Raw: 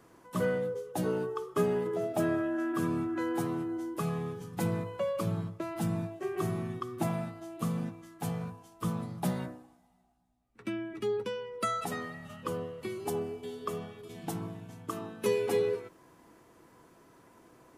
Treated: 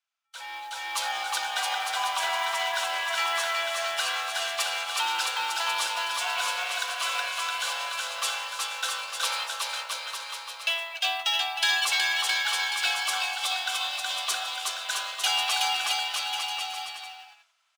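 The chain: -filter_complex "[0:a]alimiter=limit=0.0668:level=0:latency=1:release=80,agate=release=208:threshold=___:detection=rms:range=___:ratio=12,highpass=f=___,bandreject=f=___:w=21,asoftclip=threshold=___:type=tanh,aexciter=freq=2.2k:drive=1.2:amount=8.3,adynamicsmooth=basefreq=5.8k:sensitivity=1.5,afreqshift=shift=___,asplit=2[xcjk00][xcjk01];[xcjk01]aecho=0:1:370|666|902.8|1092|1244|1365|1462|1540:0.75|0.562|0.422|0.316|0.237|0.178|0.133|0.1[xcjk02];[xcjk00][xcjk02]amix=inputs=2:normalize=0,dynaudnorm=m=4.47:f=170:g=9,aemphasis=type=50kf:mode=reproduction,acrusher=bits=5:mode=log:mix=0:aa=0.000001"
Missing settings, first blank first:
0.00501, 0.0562, 1k, 1.6k, 0.0168, 340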